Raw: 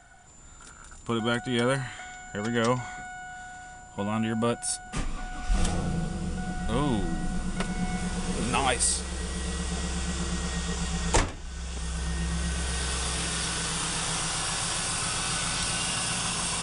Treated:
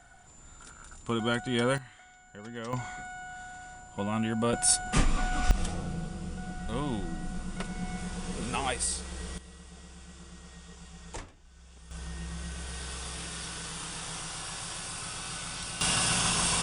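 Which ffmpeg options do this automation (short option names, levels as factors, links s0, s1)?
-af "asetnsamples=n=441:p=0,asendcmd='1.78 volume volume -13.5dB;2.73 volume volume -2dB;4.53 volume volume 6.5dB;5.51 volume volume -6dB;9.38 volume volume -18dB;11.91 volume volume -9dB;15.81 volume volume 2dB',volume=0.794"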